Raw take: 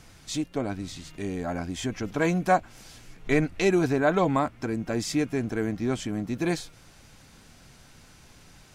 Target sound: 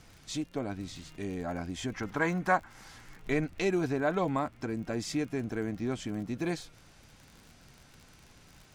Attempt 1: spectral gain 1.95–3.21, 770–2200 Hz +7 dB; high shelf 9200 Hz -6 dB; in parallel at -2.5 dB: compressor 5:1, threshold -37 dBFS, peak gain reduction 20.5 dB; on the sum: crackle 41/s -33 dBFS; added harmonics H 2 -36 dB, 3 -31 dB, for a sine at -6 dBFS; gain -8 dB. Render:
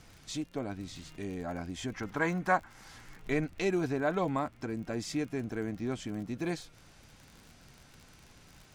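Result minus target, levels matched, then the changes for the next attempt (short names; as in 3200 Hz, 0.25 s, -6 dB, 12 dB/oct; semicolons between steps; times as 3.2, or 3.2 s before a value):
compressor: peak gain reduction +7 dB
change: compressor 5:1, threshold -28 dBFS, peak gain reduction 13.5 dB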